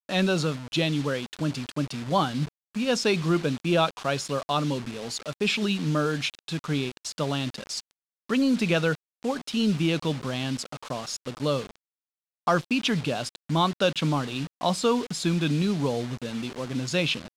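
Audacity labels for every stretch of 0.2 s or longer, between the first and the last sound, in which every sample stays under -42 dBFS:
2.480000	2.750000	silence
7.910000	8.290000	silence
8.950000	9.230000	silence
11.760000	12.470000	silence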